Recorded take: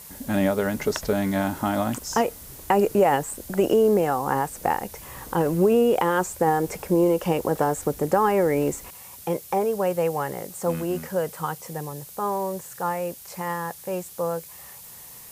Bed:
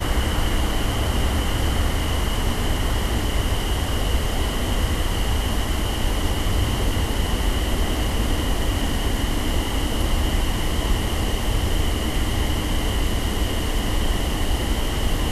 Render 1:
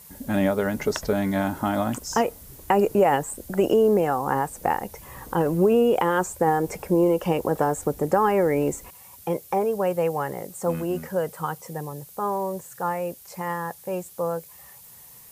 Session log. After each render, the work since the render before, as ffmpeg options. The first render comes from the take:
-af "afftdn=nr=6:nf=-44"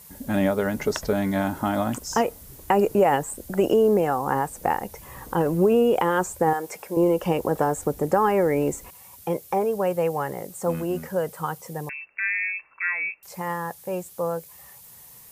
-filter_complex "[0:a]asettb=1/sr,asplit=3[a][b][c];[a]atrim=end=6.534[d];[b]atrim=start=6.53:end=6.97,asetpts=PTS-STARTPTS,afade=t=in:d=0.004:c=qsin,afade=t=out:st=0.436:d=0.004:c=qsin,highpass=f=890:p=1[e];[c]atrim=start=6.966[f];[d][e]acrossfade=d=0.004:c1=hsin:c2=qsin[g];[g][f]acrossfade=d=0.004:c1=qsin:c2=hsin,asettb=1/sr,asplit=3[h][i][j];[h]atrim=end=11.894[k];[i]atrim=start=11.89:end=13.23,asetpts=PTS-STARTPTS,afade=t=in:d=0.004:c=qsin,afade=t=out:st=1.336:d=0.004:c=qsin,lowpass=f=2.4k:t=q:w=0.5098,lowpass=f=2.4k:t=q:w=0.6013,lowpass=f=2.4k:t=q:w=0.9,lowpass=f=2.4k:t=q:w=2.563,afreqshift=-2800[l];[j]atrim=start=13.226[m];[k][l]acrossfade=d=0.004:c1=hsin:c2=qsin[n];[n][m]acrossfade=d=0.004:c1=qsin:c2=hsin"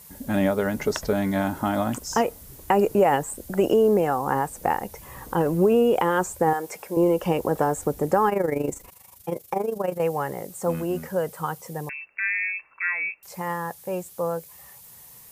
-filter_complex "[0:a]asettb=1/sr,asplit=3[a][b][c];[a]atrim=end=8.294[d];[b]atrim=start=8.29:end=10,asetpts=PTS-STARTPTS,afade=t=in:d=0.004:c=qsin,afade=t=out:st=1.706:d=0.004:c=qsin,tremolo=f=25:d=0.75[e];[c]atrim=start=9.996[f];[d][e]acrossfade=d=0.004:c1=hsin:c2=qsin[g];[g][f]acrossfade=d=0.004:c1=qsin:c2=hsin"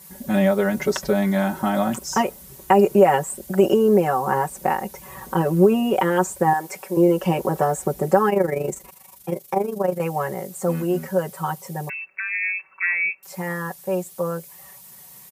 -af "highpass=63,aecho=1:1:5.3:0.94"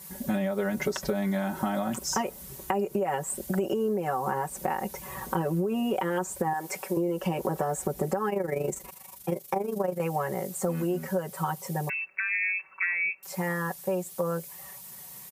-af "alimiter=limit=-9.5dB:level=0:latency=1:release=133,acompressor=threshold=-25dB:ratio=6"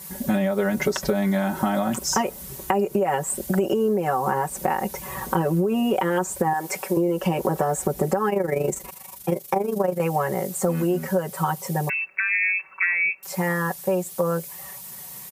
-af "volume=6dB"

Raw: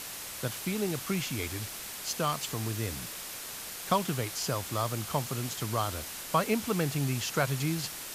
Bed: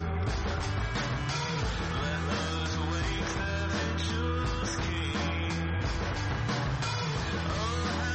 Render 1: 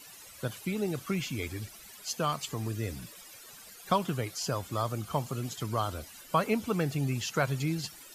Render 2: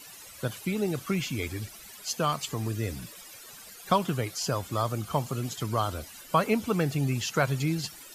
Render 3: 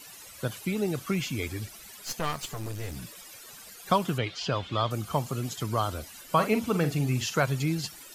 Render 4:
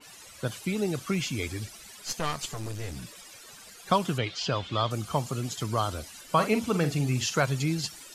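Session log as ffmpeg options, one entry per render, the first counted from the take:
-af "afftdn=nr=15:nf=-41"
-af "volume=3dB"
-filter_complex "[0:a]asettb=1/sr,asplit=3[a][b][c];[a]atrim=end=1.974[d];[b]atrim=start=1.97:end=2.96,asetpts=PTS-STARTPTS,afade=t=in:d=0.004:c=qsin,afade=t=out:st=0.986:d=0.004:c=qsin,aeval=exprs='clip(val(0),-1,0.0106)':c=same[e];[c]atrim=start=2.956[f];[d][e]acrossfade=d=0.004:c1=hsin:c2=qsin[g];[g][f]acrossfade=d=0.004:c1=qsin:c2=hsin,asettb=1/sr,asplit=3[h][i][j];[h]atrim=end=4.184[k];[i]atrim=start=4.18:end=4.91,asetpts=PTS-STARTPTS,afade=t=in:d=0.004:c=qsin,afade=t=out:st=0.726:d=0.004:c=qsin,lowpass=f=3.3k:t=q:w=3[l];[j]atrim=start=4.906[m];[k][l]acrossfade=d=0.004:c1=hsin:c2=qsin[n];[n][m]acrossfade=d=0.004:c1=qsin:c2=hsin,asettb=1/sr,asplit=3[o][p][q];[o]atrim=end=6.234[r];[p]atrim=start=6.23:end=7.4,asetpts=PTS-STARTPTS,afade=t=in:d=0.004:c=qsin,afade=t=out:st=1.166:d=0.004:c=qsin,asplit=2[s][t];[t]adelay=47,volume=-9.5dB[u];[s][u]amix=inputs=2:normalize=0,atrim=end_sample=51597[v];[q]atrim=start=7.396[w];[r][v]acrossfade=d=0.004:c1=hsin:c2=qsin[x];[x][w]acrossfade=d=0.004:c1=qsin:c2=hsin"
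-af "lowpass=9.8k,adynamicequalizer=threshold=0.00794:dfrequency=3500:dqfactor=0.7:tfrequency=3500:tqfactor=0.7:attack=5:release=100:ratio=0.375:range=2:mode=boostabove:tftype=highshelf"

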